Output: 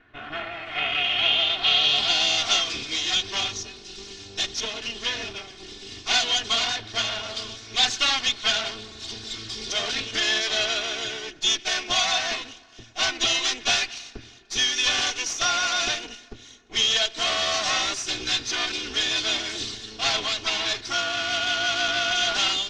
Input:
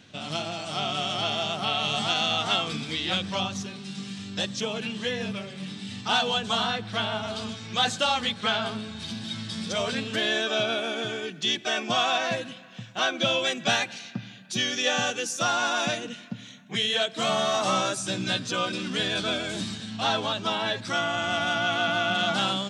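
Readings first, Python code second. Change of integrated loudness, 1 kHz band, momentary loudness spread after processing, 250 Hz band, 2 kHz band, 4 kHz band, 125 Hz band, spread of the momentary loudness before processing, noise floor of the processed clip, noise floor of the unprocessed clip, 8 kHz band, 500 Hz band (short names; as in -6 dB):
+3.5 dB, -2.5 dB, 14 LU, -8.0 dB, +2.5 dB, +5.5 dB, -8.5 dB, 11 LU, -47 dBFS, -45 dBFS, +7.0 dB, -4.5 dB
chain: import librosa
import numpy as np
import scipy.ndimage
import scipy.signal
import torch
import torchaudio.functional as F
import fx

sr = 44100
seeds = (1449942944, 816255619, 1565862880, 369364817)

y = fx.lower_of_two(x, sr, delay_ms=2.8)
y = fx.dynamic_eq(y, sr, hz=2700.0, q=0.76, threshold_db=-43.0, ratio=4.0, max_db=8)
y = fx.filter_sweep_lowpass(y, sr, from_hz=1700.0, to_hz=5800.0, start_s=0.32, end_s=2.41, q=2.8)
y = F.gain(torch.from_numpy(y), -3.0).numpy()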